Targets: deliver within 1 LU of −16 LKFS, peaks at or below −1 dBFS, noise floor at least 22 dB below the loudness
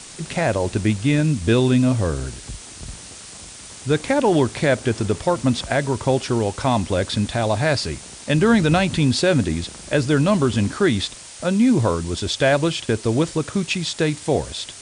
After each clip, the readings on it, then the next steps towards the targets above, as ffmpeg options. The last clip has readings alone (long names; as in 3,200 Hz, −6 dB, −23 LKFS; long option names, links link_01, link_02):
background noise floor −39 dBFS; target noise floor −42 dBFS; integrated loudness −20.0 LKFS; sample peak −6.0 dBFS; target loudness −16.0 LKFS
→ -af "afftdn=noise_reduction=6:noise_floor=-39"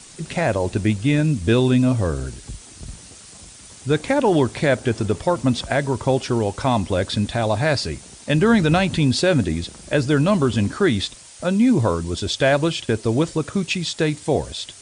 background noise floor −43 dBFS; integrated loudness −20.5 LKFS; sample peak −6.0 dBFS; target loudness −16.0 LKFS
→ -af "volume=4.5dB"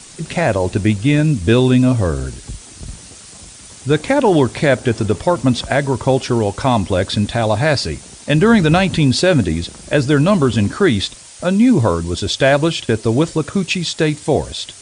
integrated loudness −16.0 LKFS; sample peak −1.5 dBFS; background noise floor −39 dBFS